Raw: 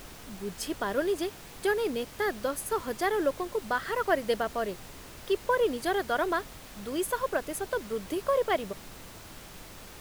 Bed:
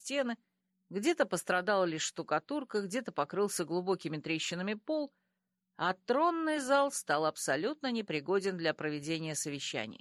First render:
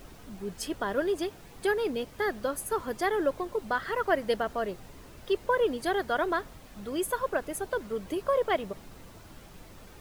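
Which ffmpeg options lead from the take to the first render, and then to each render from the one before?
-af "afftdn=nr=8:nf=-47"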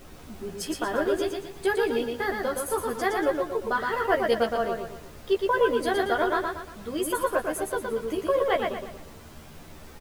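-filter_complex "[0:a]asplit=2[a][b];[b]adelay=13,volume=-3dB[c];[a][c]amix=inputs=2:normalize=0,asplit=2[d][e];[e]aecho=0:1:117|234|351|468|585:0.631|0.252|0.101|0.0404|0.0162[f];[d][f]amix=inputs=2:normalize=0"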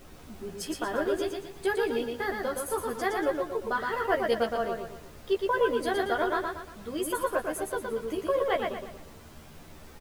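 -af "volume=-3dB"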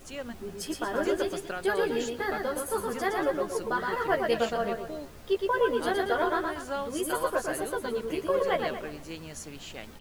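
-filter_complex "[1:a]volume=-5.5dB[a];[0:a][a]amix=inputs=2:normalize=0"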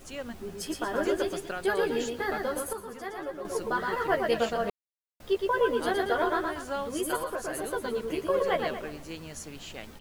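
-filter_complex "[0:a]asettb=1/sr,asplit=3[a][b][c];[a]atrim=end=7.164[d];[b]atrim=start=7.16:end=7.64,asetpts=PTS-STARTPTS,afade=t=in:d=0.004:c=qsin,afade=t=out:st=0.476:d=0.004:c=qsin,acompressor=threshold=-29dB:ratio=4:attack=3.2:release=140:knee=1:detection=peak[e];[c]atrim=start=7.636[f];[d][e]acrossfade=d=0.004:c1=hsin:c2=qsin[g];[g][f]acrossfade=d=0.004:c1=qsin:c2=hsin,asplit=5[h][i][j][k][l];[h]atrim=end=2.732[m];[i]atrim=start=2.728:end=3.452,asetpts=PTS-STARTPTS,volume=-9dB[n];[j]atrim=start=3.448:end=4.7,asetpts=PTS-STARTPTS,afade=t=out:st=1.248:d=0.004:c=hsin[o];[k]atrim=start=4.7:end=5.2,asetpts=PTS-STARTPTS,volume=0[p];[l]atrim=start=5.2,asetpts=PTS-STARTPTS,afade=t=in:d=0.004:c=hsin[q];[m][n]acrossfade=d=0.004:c1=hsin:c2=hsin[r];[o][p][q]concat=n=3:v=0:a=1[s];[r][s]acrossfade=d=0.004:c1=hsin:c2=hsin"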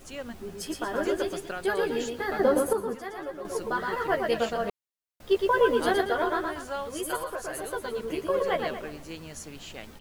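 -filter_complex "[0:a]asettb=1/sr,asplit=3[a][b][c];[a]atrim=end=2.394[d];[b]atrim=start=2.39:end=2.95,asetpts=PTS-STARTPTS,afade=t=in:d=0.004:c=qsin,afade=t=out:st=0.556:d=0.004:c=qsin,equalizer=f=330:w=0.36:g=11.5[e];[c]atrim=start=2.946[f];[d][e]acrossfade=d=0.004:c1=hsin:c2=qsin[g];[g][f]acrossfade=d=0.004:c1=qsin:c2=hsin,asettb=1/sr,asplit=3[h][i][j];[h]atrim=end=6.674[k];[i]atrim=start=6.67:end=7.99,asetpts=PTS-STARTPTS,afade=t=in:d=0.004:c=qsin,afade=t=out:st=1.316:d=0.004:c=qsin,equalizer=f=240:w=1.5:g=-7[l];[j]atrim=start=7.986[m];[k][l]acrossfade=d=0.004:c1=hsin:c2=qsin[n];[n][m]acrossfade=d=0.004:c1=qsin:c2=hsin,asplit=3[o][p][q];[o]atrim=end=5.312[r];[p]atrim=start=5.308:end=6.012,asetpts=PTS-STARTPTS,volume=3.5dB[s];[q]atrim=start=6.008[t];[r][s]acrossfade=d=0.004:c1=hsin:c2=hsin[u];[u][t]acrossfade=d=0.004:c1=hsin:c2=hsin"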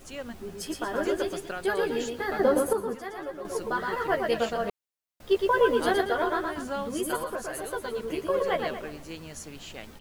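-filter_complex "[0:a]asettb=1/sr,asplit=3[a][b][c];[a]atrim=end=6.574[d];[b]atrim=start=6.57:end=7.43,asetpts=PTS-STARTPTS,afade=t=in:d=0.004:c=qsin,afade=t=out:st=0.856:d=0.004:c=qsin,equalizer=f=220:t=o:w=0.77:g=14[e];[c]atrim=start=7.426[f];[d][e]acrossfade=d=0.004:c1=hsin:c2=qsin[g];[g][f]acrossfade=d=0.004:c1=qsin:c2=hsin"

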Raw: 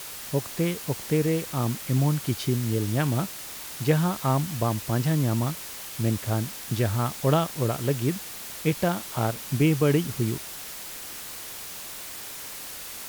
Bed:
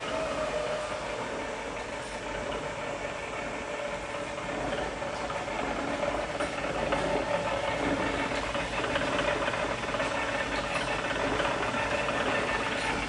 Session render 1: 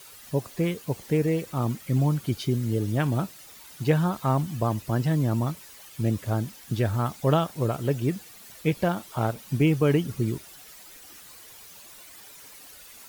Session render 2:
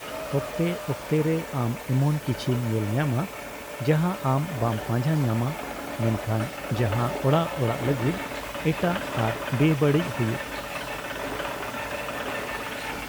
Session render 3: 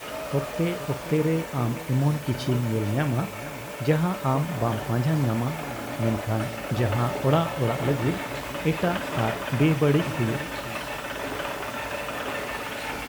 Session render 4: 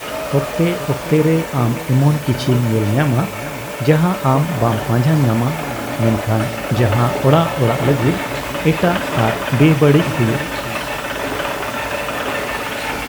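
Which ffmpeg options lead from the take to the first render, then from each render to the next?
-af "afftdn=nr=12:nf=-39"
-filter_complex "[1:a]volume=-2.5dB[a];[0:a][a]amix=inputs=2:normalize=0"
-filter_complex "[0:a]asplit=2[a][b];[b]adelay=49,volume=-13dB[c];[a][c]amix=inputs=2:normalize=0,aecho=1:1:462:0.158"
-af "volume=9.5dB,alimiter=limit=-1dB:level=0:latency=1"

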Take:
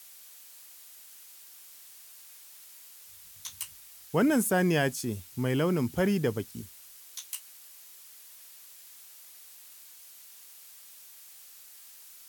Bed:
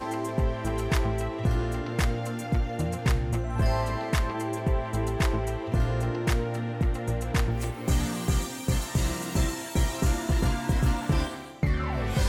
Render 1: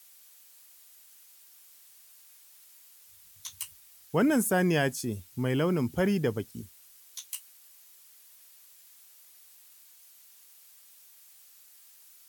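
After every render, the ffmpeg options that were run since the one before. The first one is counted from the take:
-af "afftdn=nr=6:nf=-51"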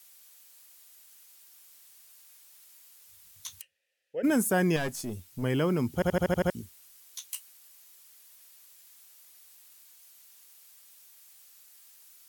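-filter_complex "[0:a]asplit=3[a][b][c];[a]afade=t=out:st=3.6:d=0.02[d];[b]asplit=3[e][f][g];[e]bandpass=f=530:t=q:w=8,volume=0dB[h];[f]bandpass=f=1.84k:t=q:w=8,volume=-6dB[i];[g]bandpass=f=2.48k:t=q:w=8,volume=-9dB[j];[h][i][j]amix=inputs=3:normalize=0,afade=t=in:st=3.6:d=0.02,afade=t=out:st=4.23:d=0.02[k];[c]afade=t=in:st=4.23:d=0.02[l];[d][k][l]amix=inputs=3:normalize=0,asettb=1/sr,asplit=3[m][n][o];[m]atrim=end=4.764[p];[n]atrim=start=4.76:end=5.43,asetpts=PTS-STARTPTS,afade=t=in:d=0.004:c=qsin,afade=t=out:st=0.666:d=0.004:c=qsin,aeval=exprs='(tanh(20*val(0)+0.4)-tanh(0.4))/20':c=same[q];[o]atrim=start=5.426[r];[p][q]acrossfade=d=0.004:c1=hsin:c2=qsin[s];[s][r]acrossfade=d=0.004:c1=qsin:c2=hsin,asplit=8[t][u][v][w][x][y][z][aa];[t]atrim=end=6.022[ab];[u]atrim=start=5.938:end=6.022[ac];[v]atrim=start=5.938:end=6.022[ad];[w]atrim=start=5.938:end=6.022[ae];[x]atrim=start=5.938:end=6.022[af];[y]atrim=start=5.938:end=6.022[ag];[z]atrim=start=5.938:end=6.022[ah];[aa]atrim=start=6.498[ai];[ab][ac]acrossfade=d=0.004:c1=hsin:c2=hsin[aj];[aj][ad]acrossfade=d=0.004:c1=hsin:c2=hsin[ak];[ak][ae]acrossfade=d=0.004:c1=hsin:c2=hsin[al];[al][af]acrossfade=d=0.004:c1=hsin:c2=hsin[am];[am][ag]acrossfade=d=0.004:c1=hsin:c2=hsin[an];[an][ah]acrossfade=d=0.004:c1=hsin:c2=hsin[ao];[ao][ai]acrossfade=d=0.004:c1=hsin:c2=hsin"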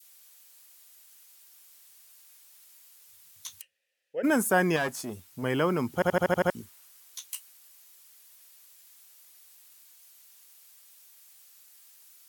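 -af "highpass=f=170:p=1,adynamicequalizer=threshold=0.00562:dfrequency=1100:dqfactor=0.77:tfrequency=1100:tqfactor=0.77:attack=5:release=100:ratio=0.375:range=3.5:mode=boostabove:tftype=bell"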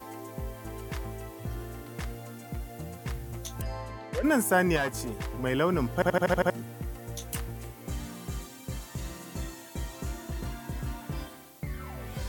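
-filter_complex "[1:a]volume=-11dB[a];[0:a][a]amix=inputs=2:normalize=0"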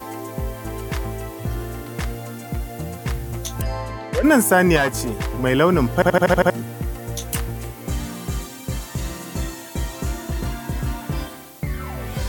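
-af "volume=10dB,alimiter=limit=-2dB:level=0:latency=1"

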